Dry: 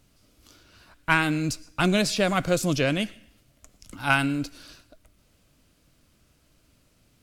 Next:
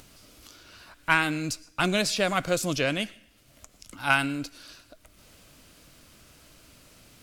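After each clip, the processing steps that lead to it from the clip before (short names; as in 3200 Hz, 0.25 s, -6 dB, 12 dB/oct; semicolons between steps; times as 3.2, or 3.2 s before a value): low shelf 360 Hz -7 dB; upward compressor, threshold -42 dBFS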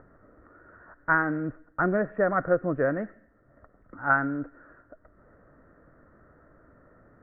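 rippled Chebyshev low-pass 1900 Hz, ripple 6 dB; gain +4 dB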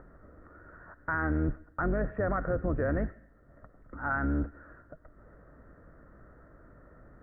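octaver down 2 oct, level +3 dB; limiter -21 dBFS, peak gain reduction 11.5 dB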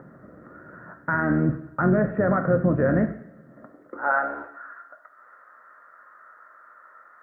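high-pass sweep 160 Hz -> 1200 Hz, 3.4–4.6; two-slope reverb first 0.53 s, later 1.6 s, from -18 dB, DRR 6 dB; gain +6 dB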